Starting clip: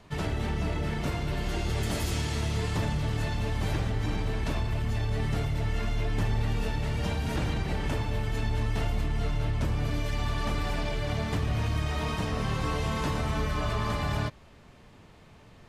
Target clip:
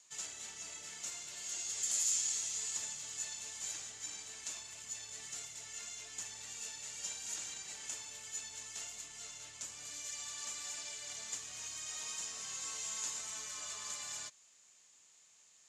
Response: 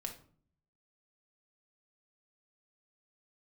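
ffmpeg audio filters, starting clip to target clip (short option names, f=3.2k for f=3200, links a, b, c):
-af "bandpass=f=7k:t=q:w=8.7:csg=0,volume=16dB"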